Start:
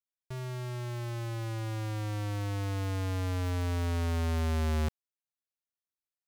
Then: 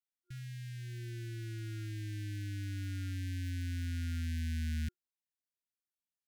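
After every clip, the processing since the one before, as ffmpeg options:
ffmpeg -i in.wav -af "afftfilt=real='re*(1-between(b*sr/4096,360,1400))':imag='im*(1-between(b*sr/4096,360,1400))':win_size=4096:overlap=0.75,volume=-6dB" out.wav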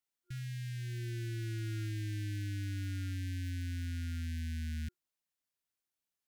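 ffmpeg -i in.wav -af "alimiter=level_in=14.5dB:limit=-24dB:level=0:latency=1,volume=-14.5dB,volume=3.5dB" out.wav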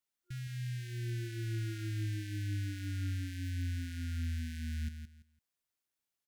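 ffmpeg -i in.wav -af "aecho=1:1:168|336|504:0.398|0.0876|0.0193" out.wav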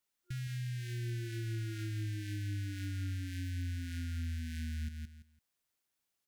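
ffmpeg -i in.wav -af "acompressor=threshold=-41dB:ratio=4,volume=4dB" out.wav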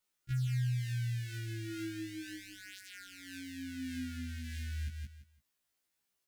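ffmpeg -i in.wav -af "afftfilt=real='re*1.73*eq(mod(b,3),0)':imag='im*1.73*eq(mod(b,3),0)':win_size=2048:overlap=0.75,volume=4dB" out.wav

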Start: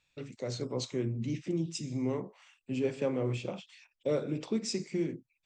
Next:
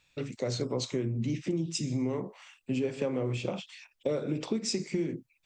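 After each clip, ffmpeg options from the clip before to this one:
ffmpeg -i in.wav -af "acompressor=threshold=-34dB:ratio=6,volume=7dB" out.wav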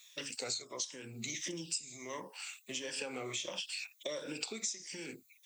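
ffmpeg -i in.wav -af "afftfilt=real='re*pow(10,11/40*sin(2*PI*(1.2*log(max(b,1)*sr/1024/100)/log(2)-(-1.5)*(pts-256)/sr)))':imag='im*pow(10,11/40*sin(2*PI*(1.2*log(max(b,1)*sr/1024/100)/log(2)-(-1.5)*(pts-256)/sr)))':win_size=1024:overlap=0.75,aderivative,acompressor=threshold=-50dB:ratio=12,volume=14.5dB" out.wav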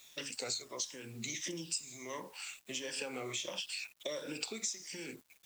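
ffmpeg -i in.wav -af "acrusher=bits=9:mix=0:aa=0.000001" out.wav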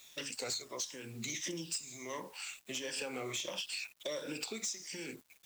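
ffmpeg -i in.wav -af "asoftclip=type=hard:threshold=-33dB,volume=1dB" out.wav

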